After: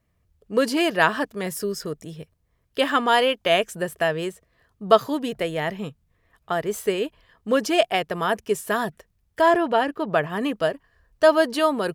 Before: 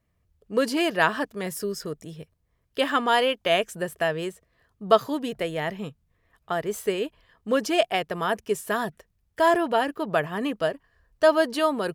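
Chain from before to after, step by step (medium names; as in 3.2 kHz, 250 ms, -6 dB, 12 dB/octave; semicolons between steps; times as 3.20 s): 9.41–10.30 s: treble shelf 6.8 kHz -10 dB; trim +2.5 dB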